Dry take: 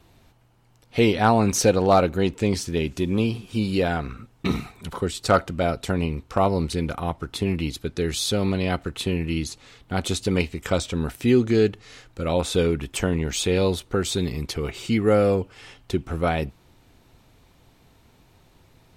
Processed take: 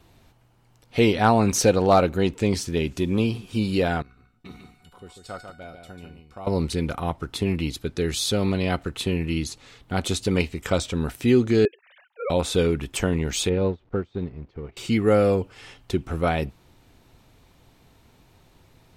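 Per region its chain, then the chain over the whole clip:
0:04.02–0:06.47: notch filter 6,200 Hz, Q 8.6 + tuned comb filter 730 Hz, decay 0.4 s, mix 90% + single-tap delay 144 ms −6.5 dB
0:11.65–0:12.30: three sine waves on the formant tracks + Chebyshev high-pass filter 420 Hz, order 5
0:13.49–0:14.77: converter with a step at zero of −32.5 dBFS + head-to-tape spacing loss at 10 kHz 43 dB + expander for the loud parts 2.5 to 1, over −34 dBFS
whole clip: no processing

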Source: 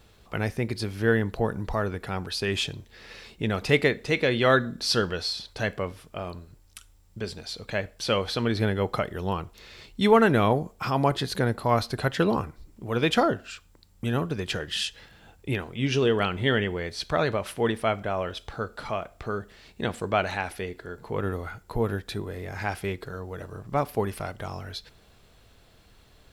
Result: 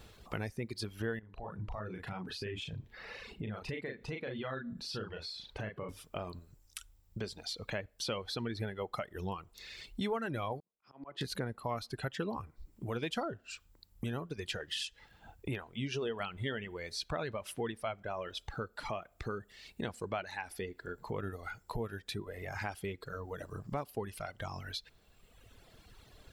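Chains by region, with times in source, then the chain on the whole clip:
0:01.19–0:05.89: double-tracking delay 38 ms −3 dB + downward compressor 2 to 1, threshold −41 dBFS + bass and treble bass +3 dB, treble −10 dB
0:10.60–0:11.21: three-way crossover with the lows and the highs turned down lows −14 dB, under 170 Hz, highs −15 dB, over 3,200 Hz + volume swells 533 ms + multiband upward and downward expander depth 70%
whole clip: reverb reduction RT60 1.6 s; downward compressor 3 to 1, threshold −40 dBFS; level +1.5 dB

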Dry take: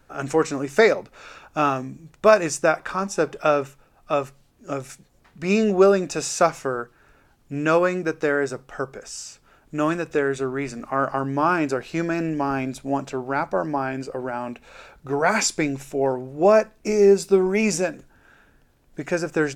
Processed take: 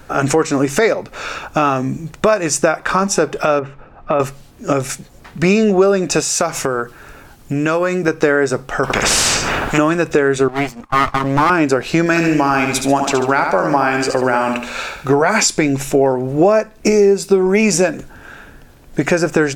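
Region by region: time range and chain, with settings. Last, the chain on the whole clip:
0:03.59–0:04.20: low-pass filter 2,000 Hz + downward compressor, threshold −25 dBFS
0:06.20–0:08.08: high-shelf EQ 6,300 Hz +5.5 dB + downward compressor 3 to 1, threshold −33 dBFS
0:08.83–0:09.78: bass and treble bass +4 dB, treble −14 dB + flutter between parallel walls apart 11.9 metres, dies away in 0.43 s + every bin compressed towards the loudest bin 4 to 1
0:10.48–0:11.50: lower of the sound and its delayed copy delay 0.92 ms + downward expander −27 dBFS
0:12.06–0:15.09: tilt shelving filter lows −4.5 dB + repeating echo 71 ms, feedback 39%, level −6.5 dB
whole clip: downward compressor 6 to 1, threshold −27 dBFS; boost into a limiter +18 dB; level −1 dB

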